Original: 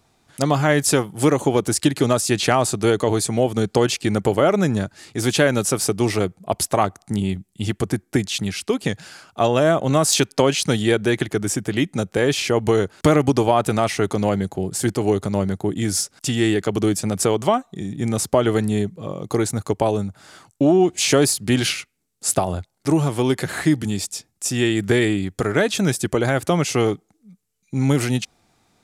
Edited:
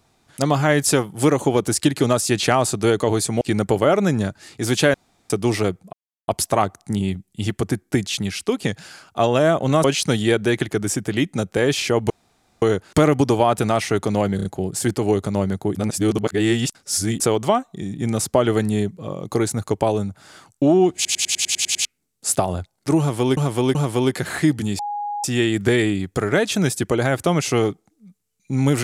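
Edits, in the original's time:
3.41–3.97 s: delete
5.50–5.86 s: room tone
6.49 s: insert silence 0.35 s
10.05–10.44 s: delete
12.70 s: insert room tone 0.52 s
14.44 s: stutter 0.03 s, 4 plays
15.74–17.19 s: reverse
20.94 s: stutter in place 0.10 s, 9 plays
22.98–23.36 s: loop, 3 plays
24.02–24.47 s: bleep 825 Hz -23.5 dBFS

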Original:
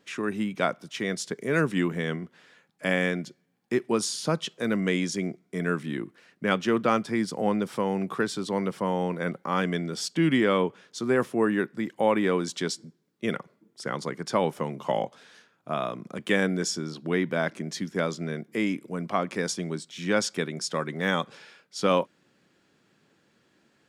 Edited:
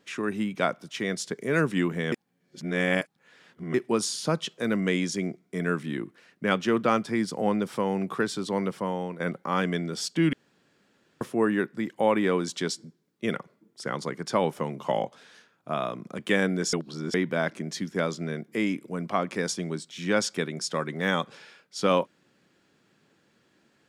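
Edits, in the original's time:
2.12–3.74 s: reverse
8.65–9.20 s: fade out, to -8 dB
10.33–11.21 s: room tone
16.73–17.14 s: reverse

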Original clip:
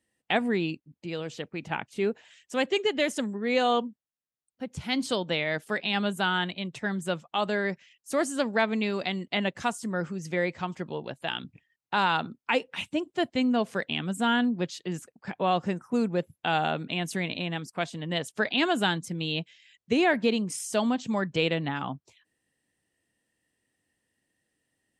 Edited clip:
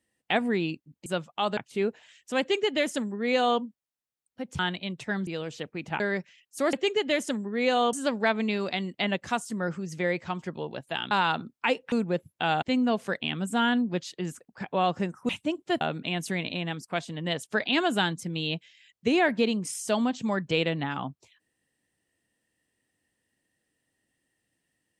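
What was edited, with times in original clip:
1.06–1.79 s: swap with 7.02–7.53 s
2.62–3.82 s: copy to 8.26 s
4.81–6.34 s: delete
11.44–11.96 s: delete
12.77–13.29 s: swap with 15.96–16.66 s

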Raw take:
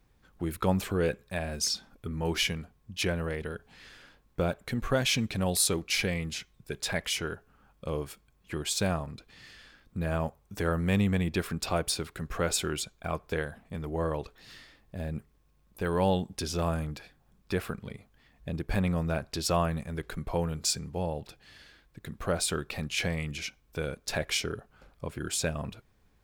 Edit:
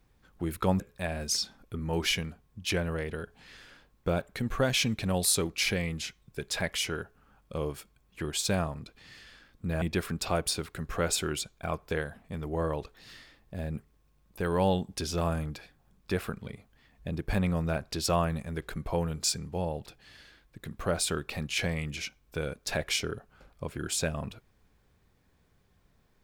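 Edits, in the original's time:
0.80–1.12 s: delete
10.14–11.23 s: delete

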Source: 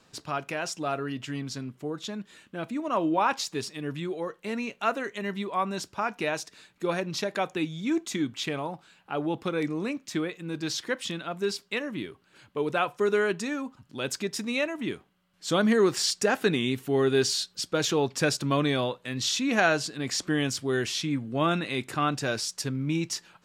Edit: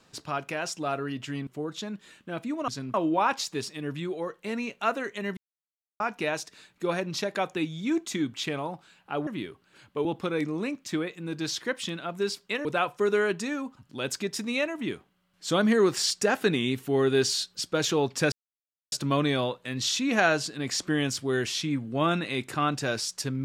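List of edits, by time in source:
1.47–1.73 s: move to 2.94 s
5.37–6.00 s: mute
11.87–12.65 s: move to 9.27 s
18.32 s: insert silence 0.60 s

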